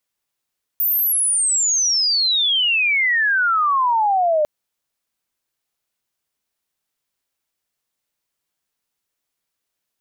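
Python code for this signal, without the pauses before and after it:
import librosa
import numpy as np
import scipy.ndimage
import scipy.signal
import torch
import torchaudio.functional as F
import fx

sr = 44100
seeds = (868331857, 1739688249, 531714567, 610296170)

y = fx.chirp(sr, length_s=3.65, from_hz=15000.0, to_hz=590.0, law='logarithmic', from_db=-15.5, to_db=-14.0)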